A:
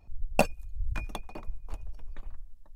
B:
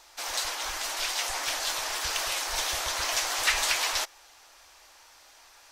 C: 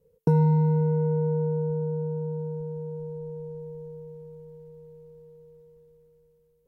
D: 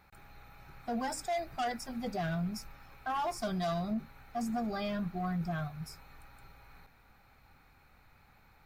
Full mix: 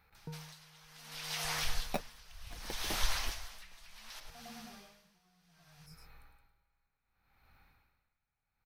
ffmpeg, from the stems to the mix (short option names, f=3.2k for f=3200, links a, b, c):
-filter_complex "[0:a]acrusher=samples=27:mix=1:aa=0.000001:lfo=1:lforange=27:lforate=1.8,adelay=1550,volume=2.5dB[a];[1:a]dynaudnorm=f=120:g=5:m=6.5dB,asoftclip=type=tanh:threshold=-9.5dB,adelay=150,volume=-2dB,asplit=2[b][c];[c]volume=-22.5dB[d];[2:a]volume=-10dB[e];[3:a]acompressor=threshold=-44dB:ratio=6,volume=-3dB,asplit=2[f][g];[g]volume=-5dB[h];[b][e][f]amix=inputs=3:normalize=0,equalizer=f=370:w=0.5:g=-10,acompressor=threshold=-31dB:ratio=12,volume=0dB[i];[d][h]amix=inputs=2:normalize=0,aecho=0:1:106:1[j];[a][i][j]amix=inputs=3:normalize=0,equalizer=f=7.3k:t=o:w=0.47:g=-8,aeval=exprs='val(0)*pow(10,-24*(0.5-0.5*cos(2*PI*0.66*n/s))/20)':c=same"